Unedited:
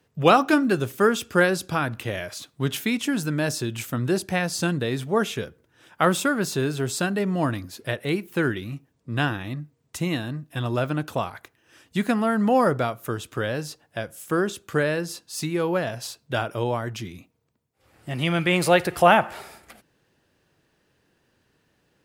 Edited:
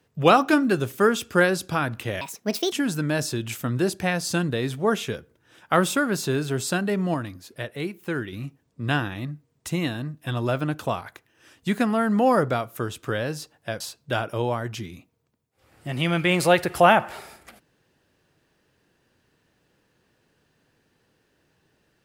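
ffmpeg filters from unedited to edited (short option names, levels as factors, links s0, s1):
-filter_complex "[0:a]asplit=6[s0][s1][s2][s3][s4][s5];[s0]atrim=end=2.214[s6];[s1]atrim=start=2.21:end=3.01,asetpts=PTS-STARTPTS,asetrate=68796,aresample=44100,atrim=end_sample=22615,asetpts=PTS-STARTPTS[s7];[s2]atrim=start=3.006:end=7.432[s8];[s3]atrim=start=7.428:end=8.612,asetpts=PTS-STARTPTS,volume=0.562[s9];[s4]atrim=start=8.608:end=14.092[s10];[s5]atrim=start=16.018[s11];[s6][s7]acrossfade=d=0.004:c1=hsin:c2=hsin[s12];[s12][s8]acrossfade=d=0.004:c1=hsin:c2=hsin[s13];[s13][s9]acrossfade=d=0.004:c1=hsin:c2=hsin[s14];[s14][s10]acrossfade=d=0.004:c1=hsin:c2=hsin[s15];[s15][s11]acrossfade=d=0.004:c1=hsin:c2=hsin"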